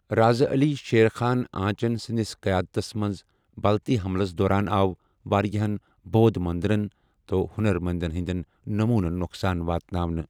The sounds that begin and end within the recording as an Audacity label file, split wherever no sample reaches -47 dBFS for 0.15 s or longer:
3.570000	4.950000	sound
5.250000	5.790000	sound
6.060000	6.920000	sound
7.290000	8.430000	sound